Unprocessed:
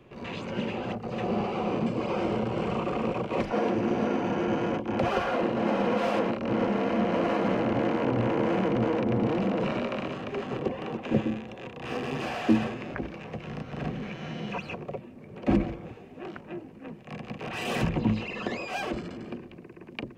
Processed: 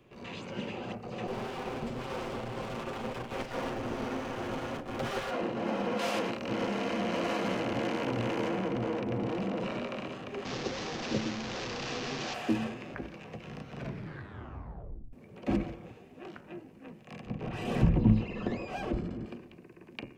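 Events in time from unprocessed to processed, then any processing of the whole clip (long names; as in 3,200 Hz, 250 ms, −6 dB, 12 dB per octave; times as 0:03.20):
0:01.27–0:05.31: lower of the sound and its delayed copy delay 7.7 ms
0:05.99–0:08.49: high-shelf EQ 2,400 Hz +9.5 dB
0:10.45–0:12.34: linear delta modulator 32 kbit/s, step −25.5 dBFS
0:13.73: tape stop 1.40 s
0:17.26–0:19.26: spectral tilt −3.5 dB per octave
whole clip: high-shelf EQ 4,200 Hz +7 dB; hum removal 74.63 Hz, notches 38; level −6 dB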